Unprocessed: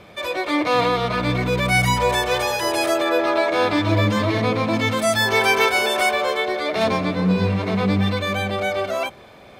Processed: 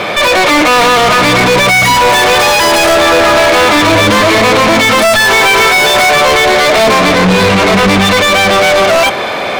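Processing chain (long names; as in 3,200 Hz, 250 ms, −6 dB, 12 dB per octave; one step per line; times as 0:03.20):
mid-hump overdrive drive 37 dB, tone 4,400 Hz, clips at −4.5 dBFS
level +3.5 dB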